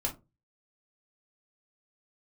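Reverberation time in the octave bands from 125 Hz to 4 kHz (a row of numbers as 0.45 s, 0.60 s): 0.45 s, 0.30 s, 0.30 s, 0.20 s, 0.15 s, 0.15 s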